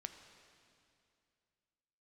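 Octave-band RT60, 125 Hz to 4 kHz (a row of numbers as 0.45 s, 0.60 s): 2.8 s, 2.7 s, 2.5 s, 2.4 s, 2.4 s, 2.3 s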